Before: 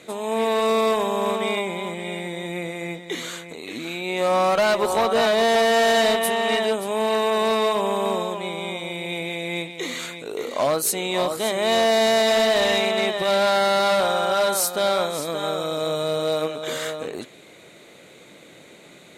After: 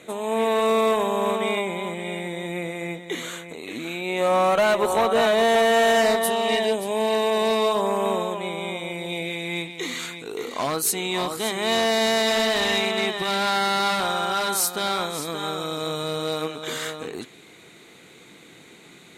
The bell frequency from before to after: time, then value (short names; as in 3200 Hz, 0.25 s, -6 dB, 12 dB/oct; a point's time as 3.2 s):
bell -13 dB 0.31 oct
5.89 s 4900 Hz
6.57 s 1300 Hz
7.55 s 1300 Hz
8.07 s 4800 Hz
8.89 s 4800 Hz
9.38 s 580 Hz